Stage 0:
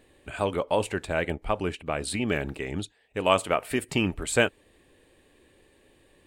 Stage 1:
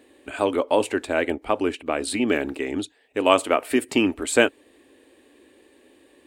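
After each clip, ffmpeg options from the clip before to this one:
ffmpeg -i in.wav -af "highpass=57,lowshelf=frequency=210:width_type=q:width=3:gain=-8,volume=3.5dB" out.wav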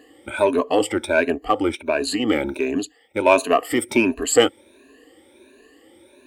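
ffmpeg -i in.wav -filter_complex "[0:a]afftfilt=real='re*pow(10,18/40*sin(2*PI*(1.5*log(max(b,1)*sr/1024/100)/log(2)-(1.4)*(pts-256)/sr)))':imag='im*pow(10,18/40*sin(2*PI*(1.5*log(max(b,1)*sr/1024/100)/log(2)-(1.4)*(pts-256)/sr)))':win_size=1024:overlap=0.75,asplit=2[link_01][link_02];[link_02]asoftclip=type=tanh:threshold=-13.5dB,volume=-5.5dB[link_03];[link_01][link_03]amix=inputs=2:normalize=0,volume=-3dB" out.wav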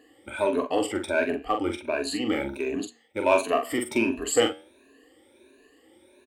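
ffmpeg -i in.wav -filter_complex "[0:a]asplit=2[link_01][link_02];[link_02]adelay=44,volume=-6dB[link_03];[link_01][link_03]amix=inputs=2:normalize=0,flanger=delay=8.8:depth=6.2:regen=-84:speed=0.39:shape=triangular,volume=-2.5dB" out.wav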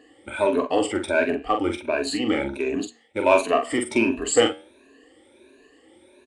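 ffmpeg -i in.wav -af "volume=3.5dB" -ar 22050 -c:a nellymoser out.flv

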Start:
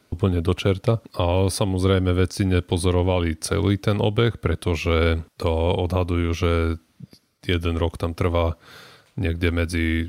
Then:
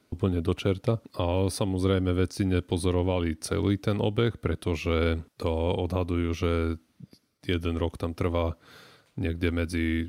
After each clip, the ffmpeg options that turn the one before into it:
ffmpeg -i in.wav -af "equalizer=frequency=280:width=1.2:gain=4,volume=-7dB" out.wav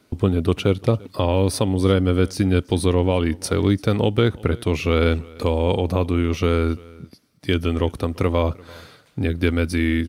ffmpeg -i in.wav -af "aecho=1:1:342:0.0668,volume=7dB" out.wav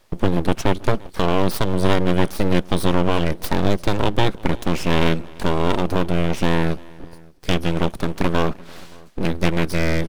ffmpeg -i in.wav -filter_complex "[0:a]aeval=exprs='abs(val(0))':channel_layout=same,asplit=2[link_01][link_02];[link_02]adelay=571.4,volume=-25dB,highshelf=frequency=4000:gain=-12.9[link_03];[link_01][link_03]amix=inputs=2:normalize=0,volume=2.5dB" out.wav

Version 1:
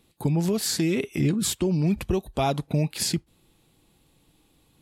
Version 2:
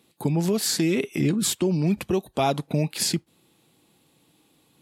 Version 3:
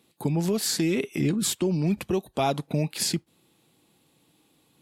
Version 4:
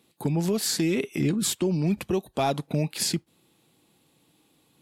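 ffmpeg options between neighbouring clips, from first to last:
ffmpeg -i in.wav -af "highpass=150,volume=2dB" out.wav
ffmpeg -i in.wav -af "aeval=exprs='0.335*(cos(1*acos(clip(val(0)/0.335,-1,1)))-cos(1*PI/2))+0.00237*(cos(4*acos(clip(val(0)/0.335,-1,1)))-cos(4*PI/2))':channel_layout=same,volume=-2dB" out.wav
ffmpeg -i in.wav -af "asoftclip=type=hard:threshold=-15dB" out.wav

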